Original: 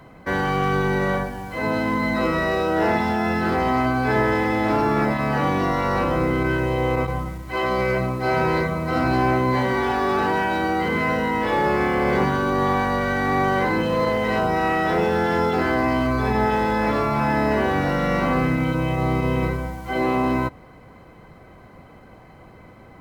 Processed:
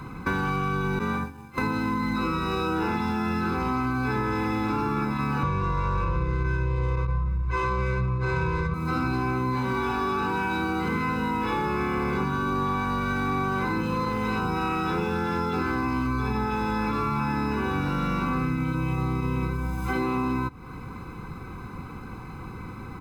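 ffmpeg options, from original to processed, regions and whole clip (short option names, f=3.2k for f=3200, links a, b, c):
-filter_complex "[0:a]asettb=1/sr,asplit=3[a][b][c];[a]atrim=end=0.994[d];[b]atrim=start=0.99:end=1.58,asetpts=PTS-STARTPTS,afade=t=in:d=0.004:c=qsin,afade=t=out:st=0.586:d=0.004:c=qsin,agate=range=-33dB:threshold=-21dB:ratio=3:release=100:detection=peak,afreqshift=32[e];[c]atrim=start=1.576[f];[d][e]acrossfade=d=0.004:c1=hsin:c2=qsin[g];[g][f]acrossfade=d=0.004:c1=qsin:c2=hsin,asettb=1/sr,asplit=3[h][i][j];[h]atrim=end=5.434[k];[i]atrim=start=5.43:end=8.74,asetpts=PTS-STARTPTS,afade=t=in:d=0.004:c=qsin,afade=t=out:st=3.306:d=0.004:c=qsin,lowshelf=f=120:g=10,aecho=1:1:1.9:0.93,atrim=end_sample=145971,adynamicsmooth=sensitivity=1.5:basefreq=2.3k[l];[j]atrim=start=8.736[m];[k][l]acrossfade=d=0.004:c1=hsin:c2=qsin[n];[n][m]acrossfade=d=0.004:c1=qsin:c2=hsin,aecho=1:1:0.8:0.95,acompressor=threshold=-29dB:ratio=6,volume=4.5dB"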